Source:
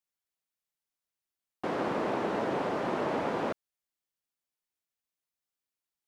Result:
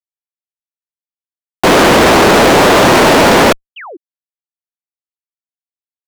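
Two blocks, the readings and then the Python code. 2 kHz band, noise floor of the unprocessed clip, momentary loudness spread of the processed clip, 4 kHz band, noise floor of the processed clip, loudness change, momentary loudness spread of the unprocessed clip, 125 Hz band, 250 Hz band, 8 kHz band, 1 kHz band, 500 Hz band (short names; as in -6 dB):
+28.0 dB, under -85 dBFS, 5 LU, +33.0 dB, under -85 dBFS, +24.5 dB, 5 LU, +25.0 dB, +23.0 dB, n/a, +24.0 dB, +23.0 dB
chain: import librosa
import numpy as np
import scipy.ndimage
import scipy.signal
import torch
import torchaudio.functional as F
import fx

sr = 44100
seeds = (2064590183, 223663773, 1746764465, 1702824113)

y = fx.fuzz(x, sr, gain_db=51.0, gate_db=-54.0)
y = fx.spec_paint(y, sr, seeds[0], shape='fall', start_s=3.76, length_s=0.21, low_hz=290.0, high_hz=3300.0, level_db=-36.0)
y = F.gain(torch.from_numpy(y), 7.0).numpy()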